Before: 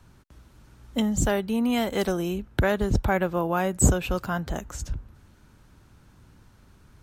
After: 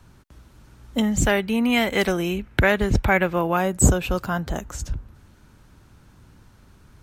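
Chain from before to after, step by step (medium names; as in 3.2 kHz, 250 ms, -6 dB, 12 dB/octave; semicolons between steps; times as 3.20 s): 1.03–3.57 s: peaking EQ 2.2 kHz +10 dB 0.86 oct; trim +3 dB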